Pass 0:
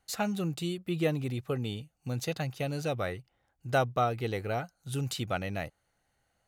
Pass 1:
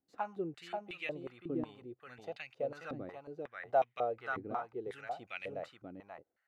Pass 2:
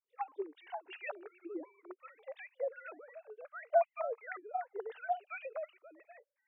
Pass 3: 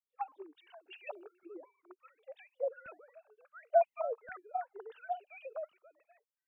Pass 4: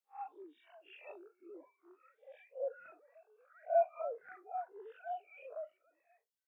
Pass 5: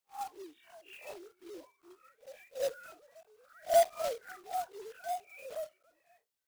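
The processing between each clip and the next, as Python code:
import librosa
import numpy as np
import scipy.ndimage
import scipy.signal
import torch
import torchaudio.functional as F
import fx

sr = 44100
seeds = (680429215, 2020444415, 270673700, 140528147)

y1 = x + 10.0 ** (-4.5 / 20.0) * np.pad(x, (int(534 * sr / 1000.0), 0))[:len(x)]
y1 = fx.filter_held_bandpass(y1, sr, hz=5.5, low_hz=290.0, high_hz=2400.0)
y1 = y1 * librosa.db_to_amplitude(2.0)
y2 = fx.sine_speech(y1, sr)
y2 = scipy.signal.sosfilt(scipy.signal.butter(2, 640.0, 'highpass', fs=sr, output='sos'), y2)
y2 = fx.notch_cascade(y2, sr, direction='falling', hz=0.51)
y2 = y2 * librosa.db_to_amplitude(5.5)
y3 = fx.peak_eq(y2, sr, hz=2000.0, db=-9.5, octaves=0.36)
y3 = fx.filter_lfo_notch(y3, sr, shape='saw_up', hz=0.7, low_hz=220.0, high_hz=2700.0, q=1.4)
y3 = fx.band_widen(y3, sr, depth_pct=40)
y4 = fx.spec_blur(y3, sr, span_ms=102.0)
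y4 = fx.dereverb_blind(y4, sr, rt60_s=0.69)
y4 = scipy.signal.sosfilt(scipy.signal.bessel(2, 160.0, 'highpass', norm='mag', fs=sr, output='sos'), y4)
y4 = y4 * librosa.db_to_amplitude(2.5)
y5 = fx.block_float(y4, sr, bits=3)
y5 = y5 * librosa.db_to_amplitude(4.5)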